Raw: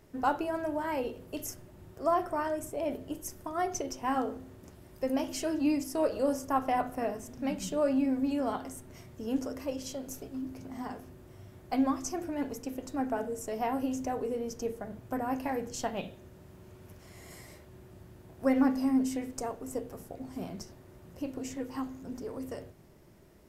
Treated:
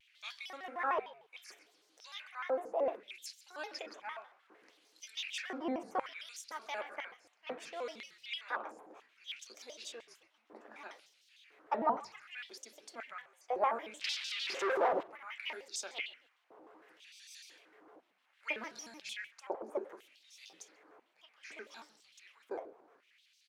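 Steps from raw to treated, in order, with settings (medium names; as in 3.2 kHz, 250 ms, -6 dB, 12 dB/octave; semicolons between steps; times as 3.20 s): dynamic bell 1.8 kHz, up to +6 dB, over -56 dBFS, Q 3.1; 14.01–15.03 s: overdrive pedal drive 34 dB, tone 3.8 kHz, clips at -21.5 dBFS; LFO high-pass square 1 Hz 400–2700 Hz; frequency-shifting echo 133 ms, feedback 33%, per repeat -73 Hz, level -21 dB; LFO band-pass sine 0.65 Hz 830–4800 Hz; vibrato with a chosen wave square 6.6 Hz, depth 250 cents; trim +4.5 dB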